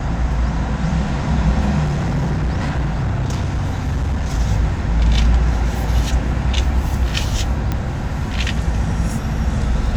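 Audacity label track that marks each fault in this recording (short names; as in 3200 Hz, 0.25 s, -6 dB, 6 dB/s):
1.840000	4.340000	clipped -15.5 dBFS
7.720000	7.720000	pop -8 dBFS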